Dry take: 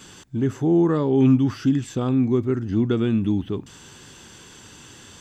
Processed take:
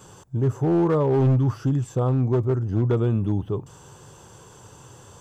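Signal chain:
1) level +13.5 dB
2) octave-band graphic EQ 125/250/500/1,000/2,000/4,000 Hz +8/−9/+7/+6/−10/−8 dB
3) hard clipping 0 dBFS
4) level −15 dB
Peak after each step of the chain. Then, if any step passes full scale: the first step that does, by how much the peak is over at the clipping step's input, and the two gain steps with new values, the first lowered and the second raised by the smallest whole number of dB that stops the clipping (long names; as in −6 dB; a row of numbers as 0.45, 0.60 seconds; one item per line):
+5.5, +6.5, 0.0, −15.0 dBFS
step 1, 6.5 dB
step 1 +6.5 dB, step 4 −8 dB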